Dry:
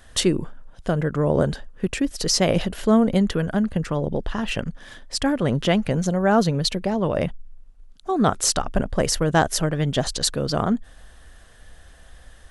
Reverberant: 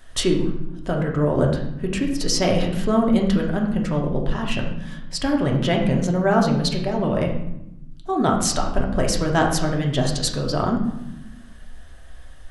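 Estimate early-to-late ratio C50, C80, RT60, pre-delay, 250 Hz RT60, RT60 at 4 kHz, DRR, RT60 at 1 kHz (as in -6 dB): 6.0 dB, 8.5 dB, 0.95 s, 3 ms, 1.6 s, 0.60 s, 0.0 dB, 0.85 s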